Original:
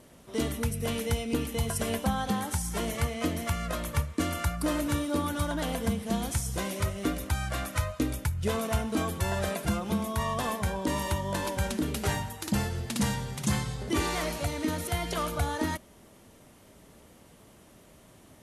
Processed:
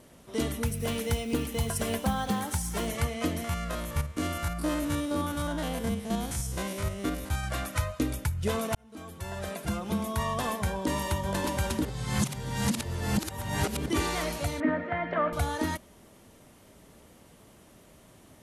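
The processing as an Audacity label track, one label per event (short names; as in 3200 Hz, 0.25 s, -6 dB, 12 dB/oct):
0.660000	2.880000	companded quantiser 6-bit
3.440000	7.440000	stepped spectrum every 50 ms
8.750000	10.080000	fade in
10.640000	11.220000	echo throw 0.59 s, feedback 60%, level -6.5 dB
11.850000	13.860000	reverse
14.600000	15.330000	speaker cabinet 150–2200 Hz, peaks and dips at 260 Hz +8 dB, 400 Hz -6 dB, 600 Hz +9 dB, 1200 Hz +3 dB, 1800 Hz +9 dB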